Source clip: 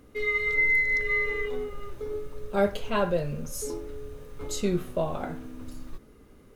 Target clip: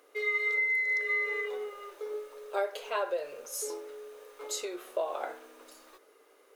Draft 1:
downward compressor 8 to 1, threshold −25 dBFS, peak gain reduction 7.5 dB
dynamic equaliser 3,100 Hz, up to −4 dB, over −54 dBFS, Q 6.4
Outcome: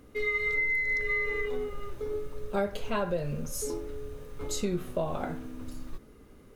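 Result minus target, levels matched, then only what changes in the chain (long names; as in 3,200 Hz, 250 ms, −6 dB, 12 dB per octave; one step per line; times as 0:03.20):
250 Hz band +13.5 dB
add after downward compressor: inverse Chebyshev high-pass filter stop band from 210 Hz, stop band 40 dB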